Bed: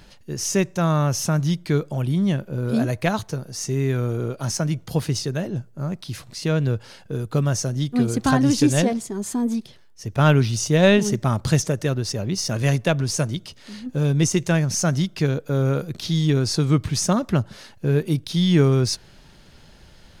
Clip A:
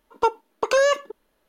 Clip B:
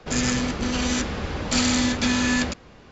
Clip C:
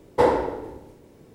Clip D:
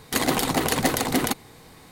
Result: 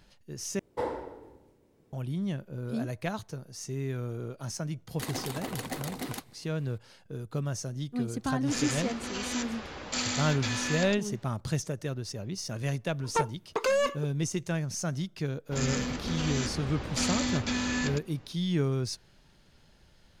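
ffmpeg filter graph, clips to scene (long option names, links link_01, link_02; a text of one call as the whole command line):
ffmpeg -i bed.wav -i cue0.wav -i cue1.wav -i cue2.wav -i cue3.wav -filter_complex "[2:a]asplit=2[link_01][link_02];[0:a]volume=-11.5dB[link_03];[link_01]lowshelf=frequency=260:gain=-12[link_04];[1:a]asoftclip=type=tanh:threshold=-19.5dB[link_05];[link_03]asplit=2[link_06][link_07];[link_06]atrim=end=0.594[link_08];[3:a]atrim=end=1.34,asetpts=PTS-STARTPTS,volume=-14dB[link_09];[link_07]atrim=start=1.926[link_10];[4:a]atrim=end=1.91,asetpts=PTS-STARTPTS,volume=-14.5dB,afade=type=in:duration=0.004:curve=hsin,afade=type=out:start_time=1.906:duration=0.004:curve=hsin,adelay=4870[link_11];[link_04]atrim=end=2.91,asetpts=PTS-STARTPTS,volume=-8dB,afade=type=in:duration=0.004:curve=hsin,afade=type=out:start_time=2.906:duration=0.004:curve=hsin,adelay=8410[link_12];[link_05]atrim=end=1.48,asetpts=PTS-STARTPTS,volume=-2dB,afade=type=in:duration=0.004:curve=hsin,afade=type=out:start_time=1.476:duration=0.004:curve=hsin,adelay=12930[link_13];[link_02]atrim=end=2.91,asetpts=PTS-STARTPTS,volume=-8.5dB,afade=type=in:duration=0.05,afade=type=out:start_time=2.86:duration=0.05,adelay=15450[link_14];[link_08][link_09]acrossfade=duration=0.004:curve1=hsin:curve2=hsin[link_15];[link_15][link_10]acrossfade=duration=0.004:curve1=hsin:curve2=hsin[link_16];[link_16][link_11][link_12][link_13][link_14]amix=inputs=5:normalize=0" out.wav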